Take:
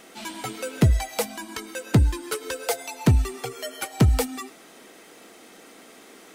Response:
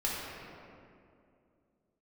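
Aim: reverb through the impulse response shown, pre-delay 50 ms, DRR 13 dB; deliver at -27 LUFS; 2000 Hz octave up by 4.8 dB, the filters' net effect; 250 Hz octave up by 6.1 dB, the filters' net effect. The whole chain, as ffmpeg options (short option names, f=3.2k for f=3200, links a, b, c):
-filter_complex "[0:a]equalizer=f=250:t=o:g=8,equalizer=f=2k:t=o:g=6,asplit=2[a][b];[1:a]atrim=start_sample=2205,adelay=50[c];[b][c]afir=irnorm=-1:irlink=0,volume=-20dB[d];[a][d]amix=inputs=2:normalize=0,volume=-4.5dB"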